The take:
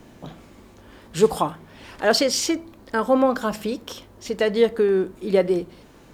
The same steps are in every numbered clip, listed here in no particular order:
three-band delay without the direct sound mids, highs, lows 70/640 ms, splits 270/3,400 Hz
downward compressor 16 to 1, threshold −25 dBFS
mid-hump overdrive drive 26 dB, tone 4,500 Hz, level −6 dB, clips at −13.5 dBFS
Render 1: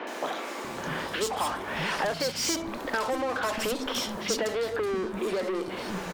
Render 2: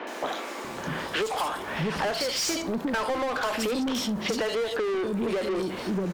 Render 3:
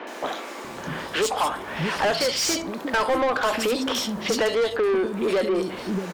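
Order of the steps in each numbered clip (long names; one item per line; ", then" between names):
mid-hump overdrive, then downward compressor, then three-band delay without the direct sound
three-band delay without the direct sound, then mid-hump overdrive, then downward compressor
downward compressor, then three-band delay without the direct sound, then mid-hump overdrive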